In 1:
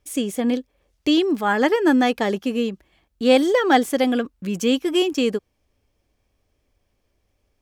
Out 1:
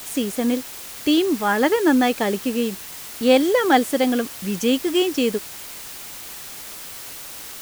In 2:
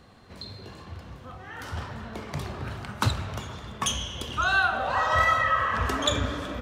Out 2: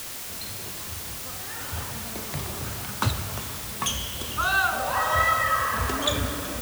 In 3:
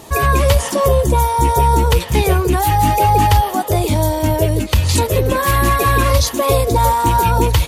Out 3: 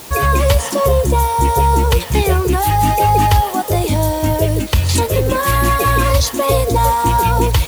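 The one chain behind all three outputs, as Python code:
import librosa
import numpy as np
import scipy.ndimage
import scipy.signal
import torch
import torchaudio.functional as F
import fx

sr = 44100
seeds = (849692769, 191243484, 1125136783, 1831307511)

y = fx.quant_dither(x, sr, seeds[0], bits=6, dither='triangular')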